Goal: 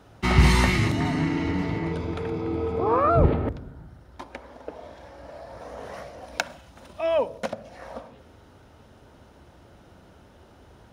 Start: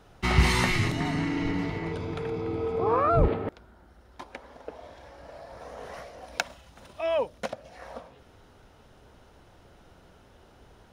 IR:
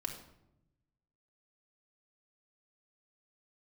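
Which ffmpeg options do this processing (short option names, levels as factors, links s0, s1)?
-filter_complex "[0:a]highpass=66,asplit=2[s0][s1];[1:a]atrim=start_sample=2205,lowpass=2100,lowshelf=f=330:g=10.5[s2];[s1][s2]afir=irnorm=-1:irlink=0,volume=0.266[s3];[s0][s3]amix=inputs=2:normalize=0,volume=1.19"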